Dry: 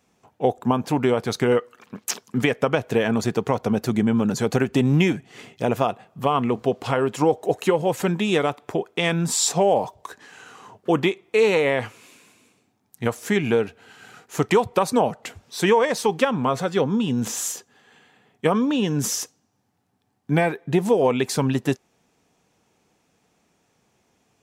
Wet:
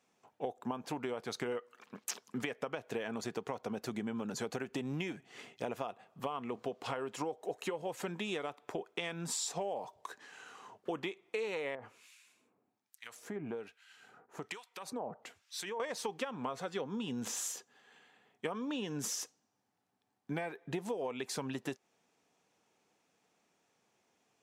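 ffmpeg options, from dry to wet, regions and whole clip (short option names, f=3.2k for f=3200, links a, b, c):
-filter_complex "[0:a]asettb=1/sr,asplit=3[a][b][c];[a]atrim=end=11.754[d];[b]atrim=start=11.75:end=15.8,asetpts=PTS-STARTPTS,afade=t=in:d=0.004:c=qsin,afade=t=out:st=4.046:d=0.004:c=qsin,acompressor=threshold=-23dB:ratio=4:attack=3.2:release=140:knee=1:detection=peak,acrossover=split=1400[e][f];[e]aeval=exprs='val(0)*(1-1/2+1/2*cos(2*PI*1.2*n/s))':c=same[g];[f]aeval=exprs='val(0)*(1-1/2-1/2*cos(2*PI*1.2*n/s))':c=same[h];[g][h]amix=inputs=2:normalize=0[i];[c]atrim=start=15.796[j];[d][i]acrossfade=d=0.004:c1=hsin:c2=qsin[k];[k][j]acrossfade=d=0.004:c1=qsin:c2=hsin,highpass=f=360:p=1,highshelf=f=12k:g=-7,acompressor=threshold=-27dB:ratio=6,volume=-7.5dB"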